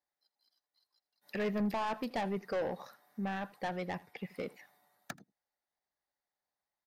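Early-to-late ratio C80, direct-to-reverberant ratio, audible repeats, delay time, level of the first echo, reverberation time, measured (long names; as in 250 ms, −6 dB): no reverb audible, no reverb audible, 1, 81 ms, −21.5 dB, no reverb audible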